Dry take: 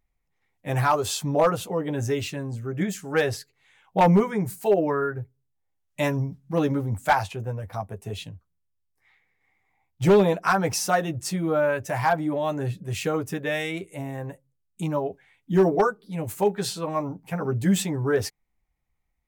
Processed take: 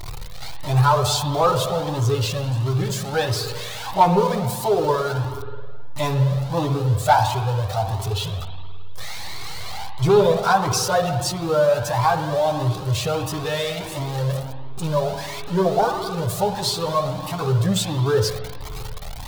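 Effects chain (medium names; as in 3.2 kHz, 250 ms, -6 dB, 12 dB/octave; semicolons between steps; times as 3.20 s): jump at every zero crossing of -27.5 dBFS; graphic EQ 125/250/500/1000/2000/4000 Hz +8/-7/+3/+7/-8/+9 dB; on a send at -6 dB: reverberation RT60 1.8 s, pre-delay 53 ms; on the sum: Shepard-style flanger rising 1.5 Hz; trim +2.5 dB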